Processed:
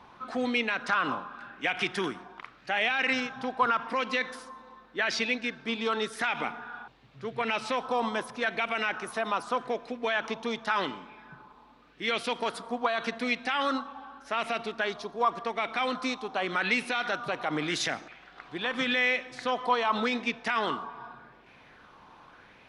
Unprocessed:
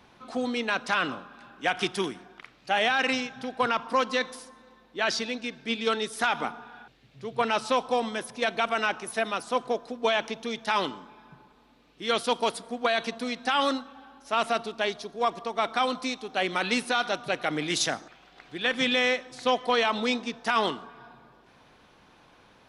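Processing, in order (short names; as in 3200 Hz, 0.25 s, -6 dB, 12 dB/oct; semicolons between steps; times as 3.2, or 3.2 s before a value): high shelf 7100 Hz -10 dB; limiter -21 dBFS, peak gain reduction 7 dB; LFO bell 0.86 Hz 970–2400 Hz +10 dB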